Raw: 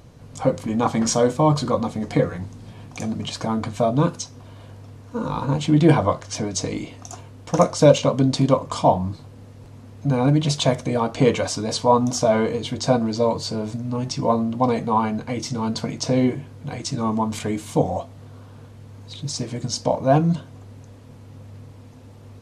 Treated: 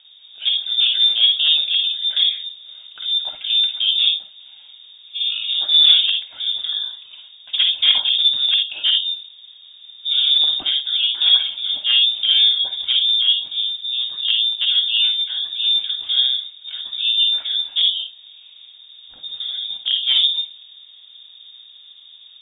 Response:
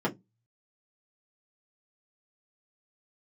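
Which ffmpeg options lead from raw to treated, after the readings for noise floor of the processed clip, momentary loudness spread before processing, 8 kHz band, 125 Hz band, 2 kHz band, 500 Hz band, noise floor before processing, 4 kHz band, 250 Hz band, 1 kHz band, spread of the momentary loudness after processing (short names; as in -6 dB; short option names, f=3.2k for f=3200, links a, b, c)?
-45 dBFS, 13 LU, under -40 dB, under -40 dB, +4.0 dB, under -30 dB, -43 dBFS, +21.0 dB, under -35 dB, under -20 dB, 13 LU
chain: -filter_complex "[0:a]equalizer=f=370:t=o:w=2.1:g=7,asoftclip=type=hard:threshold=-5.5dB,asplit=2[a][b];[1:a]atrim=start_sample=2205,adelay=50[c];[b][c]afir=irnorm=-1:irlink=0,volume=-13.5dB[d];[a][d]amix=inputs=2:normalize=0,lowpass=f=3.2k:t=q:w=0.5098,lowpass=f=3.2k:t=q:w=0.6013,lowpass=f=3.2k:t=q:w=0.9,lowpass=f=3.2k:t=q:w=2.563,afreqshift=-3800,volume=-6.5dB"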